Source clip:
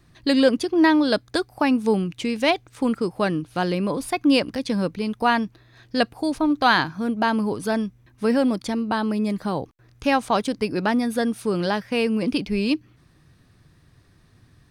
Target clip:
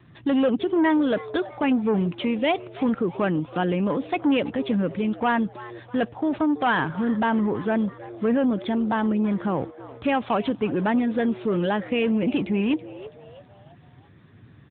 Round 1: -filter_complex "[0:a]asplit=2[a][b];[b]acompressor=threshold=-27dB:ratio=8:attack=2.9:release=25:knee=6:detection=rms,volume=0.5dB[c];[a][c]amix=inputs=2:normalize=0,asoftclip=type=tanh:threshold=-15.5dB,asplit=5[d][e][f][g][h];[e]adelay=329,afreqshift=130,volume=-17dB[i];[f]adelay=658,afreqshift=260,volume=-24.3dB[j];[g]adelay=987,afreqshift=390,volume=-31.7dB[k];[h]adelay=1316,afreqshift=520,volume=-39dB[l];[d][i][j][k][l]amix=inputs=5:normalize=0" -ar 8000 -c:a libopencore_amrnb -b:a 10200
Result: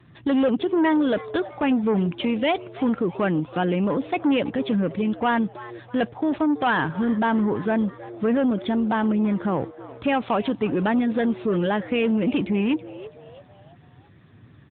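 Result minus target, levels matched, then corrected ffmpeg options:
compressor: peak gain reduction -5.5 dB
-filter_complex "[0:a]asplit=2[a][b];[b]acompressor=threshold=-33.5dB:ratio=8:attack=2.9:release=25:knee=6:detection=rms,volume=0.5dB[c];[a][c]amix=inputs=2:normalize=0,asoftclip=type=tanh:threshold=-15.5dB,asplit=5[d][e][f][g][h];[e]adelay=329,afreqshift=130,volume=-17dB[i];[f]adelay=658,afreqshift=260,volume=-24.3dB[j];[g]adelay=987,afreqshift=390,volume=-31.7dB[k];[h]adelay=1316,afreqshift=520,volume=-39dB[l];[d][i][j][k][l]amix=inputs=5:normalize=0" -ar 8000 -c:a libopencore_amrnb -b:a 10200

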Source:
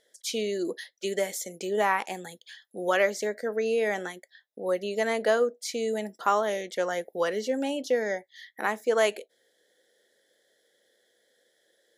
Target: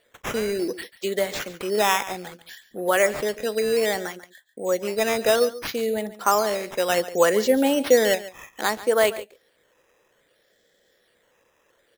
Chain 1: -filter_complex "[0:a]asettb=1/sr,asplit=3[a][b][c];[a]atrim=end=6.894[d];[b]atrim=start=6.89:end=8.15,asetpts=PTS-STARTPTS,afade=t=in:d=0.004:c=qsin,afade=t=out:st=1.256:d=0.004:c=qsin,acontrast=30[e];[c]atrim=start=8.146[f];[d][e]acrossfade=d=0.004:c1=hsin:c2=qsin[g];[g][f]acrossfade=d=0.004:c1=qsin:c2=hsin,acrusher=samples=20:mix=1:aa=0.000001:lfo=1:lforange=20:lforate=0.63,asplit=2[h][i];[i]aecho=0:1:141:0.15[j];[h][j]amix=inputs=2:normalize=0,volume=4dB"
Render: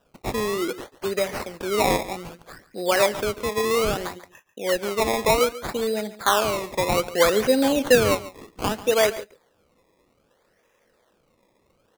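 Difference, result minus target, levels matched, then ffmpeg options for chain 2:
decimation with a swept rate: distortion +9 dB
-filter_complex "[0:a]asettb=1/sr,asplit=3[a][b][c];[a]atrim=end=6.894[d];[b]atrim=start=6.89:end=8.15,asetpts=PTS-STARTPTS,afade=t=in:d=0.004:c=qsin,afade=t=out:st=1.256:d=0.004:c=qsin,acontrast=30[e];[c]atrim=start=8.146[f];[d][e]acrossfade=d=0.004:c1=hsin:c2=qsin[g];[g][f]acrossfade=d=0.004:c1=qsin:c2=hsin,acrusher=samples=7:mix=1:aa=0.000001:lfo=1:lforange=7:lforate=0.63,asplit=2[h][i];[i]aecho=0:1:141:0.15[j];[h][j]amix=inputs=2:normalize=0,volume=4dB"

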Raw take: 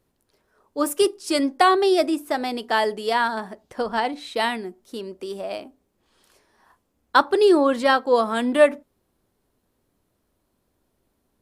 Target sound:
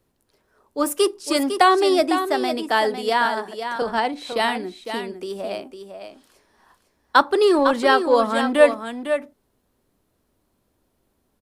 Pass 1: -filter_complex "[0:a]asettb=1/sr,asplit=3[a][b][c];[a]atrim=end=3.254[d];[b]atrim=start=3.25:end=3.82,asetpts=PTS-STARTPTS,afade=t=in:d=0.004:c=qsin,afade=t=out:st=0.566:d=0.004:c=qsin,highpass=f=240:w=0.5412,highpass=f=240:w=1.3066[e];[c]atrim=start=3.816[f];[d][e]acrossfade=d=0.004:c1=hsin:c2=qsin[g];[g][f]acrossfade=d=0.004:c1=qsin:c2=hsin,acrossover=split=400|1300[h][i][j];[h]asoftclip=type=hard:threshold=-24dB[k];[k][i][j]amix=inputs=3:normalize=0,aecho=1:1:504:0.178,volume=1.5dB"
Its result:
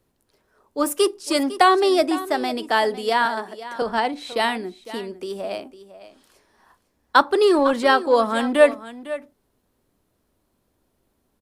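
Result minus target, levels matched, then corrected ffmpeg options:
echo-to-direct -6.5 dB
-filter_complex "[0:a]asettb=1/sr,asplit=3[a][b][c];[a]atrim=end=3.254[d];[b]atrim=start=3.25:end=3.82,asetpts=PTS-STARTPTS,afade=t=in:d=0.004:c=qsin,afade=t=out:st=0.566:d=0.004:c=qsin,highpass=f=240:w=0.5412,highpass=f=240:w=1.3066[e];[c]atrim=start=3.816[f];[d][e]acrossfade=d=0.004:c1=hsin:c2=qsin[g];[g][f]acrossfade=d=0.004:c1=qsin:c2=hsin,acrossover=split=400|1300[h][i][j];[h]asoftclip=type=hard:threshold=-24dB[k];[k][i][j]amix=inputs=3:normalize=0,aecho=1:1:504:0.376,volume=1.5dB"

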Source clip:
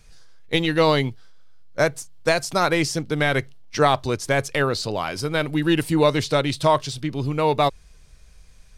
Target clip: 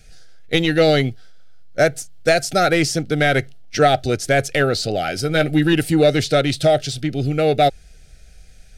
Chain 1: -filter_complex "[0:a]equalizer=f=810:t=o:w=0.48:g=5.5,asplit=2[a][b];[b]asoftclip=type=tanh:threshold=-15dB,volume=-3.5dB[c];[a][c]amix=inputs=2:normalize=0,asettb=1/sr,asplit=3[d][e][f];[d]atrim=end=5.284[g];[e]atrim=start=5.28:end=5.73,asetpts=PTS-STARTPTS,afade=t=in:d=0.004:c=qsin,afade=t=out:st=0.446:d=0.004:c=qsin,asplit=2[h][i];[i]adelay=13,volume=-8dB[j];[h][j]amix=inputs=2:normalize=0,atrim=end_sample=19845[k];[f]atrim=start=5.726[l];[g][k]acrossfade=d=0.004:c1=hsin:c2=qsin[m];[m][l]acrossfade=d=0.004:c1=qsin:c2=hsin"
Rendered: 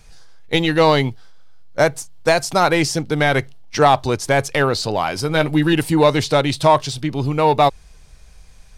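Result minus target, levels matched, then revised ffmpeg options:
1000 Hz band +3.5 dB
-filter_complex "[0:a]asuperstop=centerf=1000:order=12:qfactor=2,equalizer=f=810:t=o:w=0.48:g=5.5,asplit=2[a][b];[b]asoftclip=type=tanh:threshold=-15dB,volume=-3.5dB[c];[a][c]amix=inputs=2:normalize=0,asettb=1/sr,asplit=3[d][e][f];[d]atrim=end=5.284[g];[e]atrim=start=5.28:end=5.73,asetpts=PTS-STARTPTS,afade=t=in:d=0.004:c=qsin,afade=t=out:st=0.446:d=0.004:c=qsin,asplit=2[h][i];[i]adelay=13,volume=-8dB[j];[h][j]amix=inputs=2:normalize=0,atrim=end_sample=19845[k];[f]atrim=start=5.726[l];[g][k]acrossfade=d=0.004:c1=hsin:c2=qsin[m];[m][l]acrossfade=d=0.004:c1=qsin:c2=hsin"

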